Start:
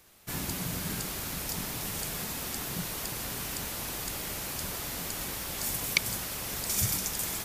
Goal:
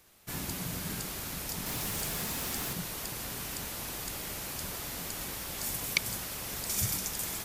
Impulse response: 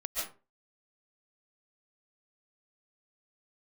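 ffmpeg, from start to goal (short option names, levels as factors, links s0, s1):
-filter_complex "[0:a]asettb=1/sr,asplit=3[s0][s1][s2];[s0]atrim=end=1.664[s3];[s1]atrim=start=1.66:end=2.73,asetpts=PTS-STARTPTS,afade=t=in:d=0.004:c=qsin,afade=t=out:st=1.066:d=0.004:c=qsin,aeval=exprs='val(0)+0.5*0.0168*sgn(val(0))':c=same[s4];[s2]atrim=start=2.726[s5];[s3][s4]acrossfade=d=0.004:c1=hsin:c2=qsin[s6];[s6][s5]acrossfade=d=0.004:c1=qsin:c2=hsin,volume=0.75"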